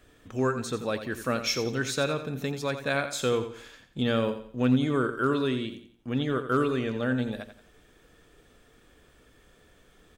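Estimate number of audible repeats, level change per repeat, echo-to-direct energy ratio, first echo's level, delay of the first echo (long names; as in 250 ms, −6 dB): 3, −9.0 dB, −10.0 dB, −10.5 dB, 87 ms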